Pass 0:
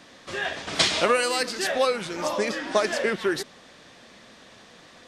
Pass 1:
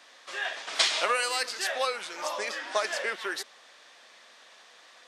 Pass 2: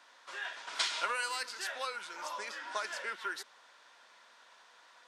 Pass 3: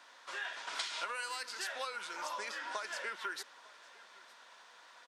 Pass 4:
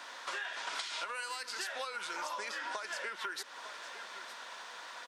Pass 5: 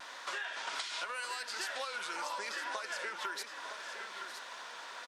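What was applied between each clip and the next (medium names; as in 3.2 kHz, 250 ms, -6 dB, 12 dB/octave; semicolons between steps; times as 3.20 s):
high-pass 710 Hz 12 dB/octave; trim -2.5 dB
dynamic bell 710 Hz, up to -6 dB, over -42 dBFS, Q 0.8; small resonant body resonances 980/1400 Hz, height 12 dB, ringing for 25 ms; trim -8.5 dB
compression 6:1, threshold -38 dBFS, peak gain reduction 10.5 dB; delay 907 ms -22 dB; trim +2 dB
compression 6:1, threshold -48 dBFS, peak gain reduction 14 dB; trim +11 dB
vibrato 1.2 Hz 38 cents; on a send: delay 963 ms -9 dB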